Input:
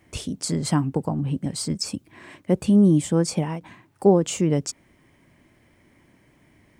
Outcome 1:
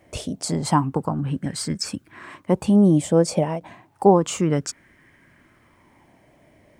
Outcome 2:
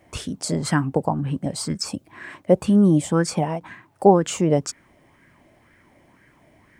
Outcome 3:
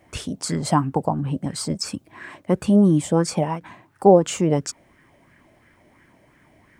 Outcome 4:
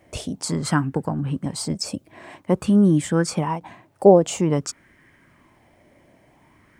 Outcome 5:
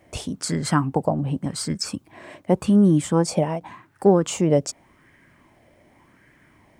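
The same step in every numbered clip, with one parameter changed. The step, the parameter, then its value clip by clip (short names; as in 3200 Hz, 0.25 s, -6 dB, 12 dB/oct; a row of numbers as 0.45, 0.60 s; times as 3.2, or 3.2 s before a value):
LFO bell, rate: 0.3, 2, 2.9, 0.5, 0.87 Hz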